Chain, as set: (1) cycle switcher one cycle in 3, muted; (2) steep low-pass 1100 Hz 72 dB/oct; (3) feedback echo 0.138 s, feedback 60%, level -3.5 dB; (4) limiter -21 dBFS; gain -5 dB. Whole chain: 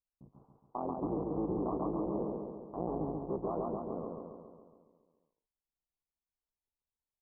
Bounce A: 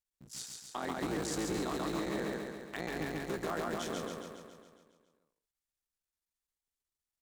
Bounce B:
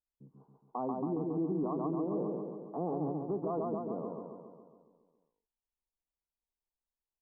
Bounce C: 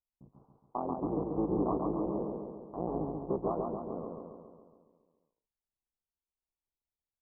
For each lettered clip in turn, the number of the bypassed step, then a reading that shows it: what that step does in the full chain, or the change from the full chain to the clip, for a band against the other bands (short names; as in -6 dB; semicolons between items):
2, momentary loudness spread change -1 LU; 1, loudness change +1.5 LU; 4, crest factor change +5.5 dB